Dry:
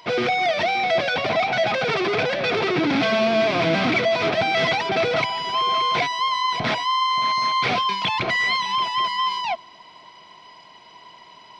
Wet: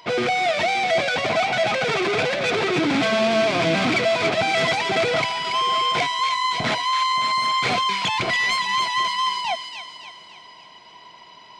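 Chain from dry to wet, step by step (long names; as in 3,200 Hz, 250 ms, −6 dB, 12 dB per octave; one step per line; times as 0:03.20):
phase distortion by the signal itself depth 0.056 ms
on a send: delay with a high-pass on its return 283 ms, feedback 49%, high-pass 1,800 Hz, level −5 dB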